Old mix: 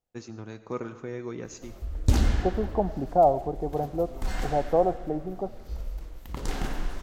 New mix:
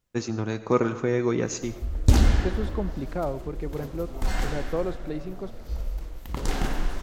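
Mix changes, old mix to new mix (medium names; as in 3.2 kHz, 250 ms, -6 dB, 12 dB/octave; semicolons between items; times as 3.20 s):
first voice +11.5 dB; second voice: remove resonant low-pass 750 Hz, resonance Q 8; background +4.0 dB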